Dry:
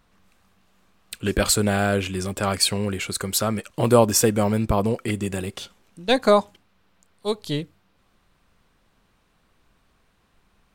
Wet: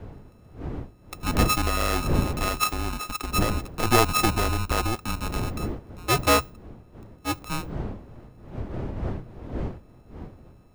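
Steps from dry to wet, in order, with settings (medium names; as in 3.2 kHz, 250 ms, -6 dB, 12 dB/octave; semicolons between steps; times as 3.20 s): sorted samples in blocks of 32 samples; wind noise 350 Hz -29 dBFS; frequency shift -130 Hz; trim -3.5 dB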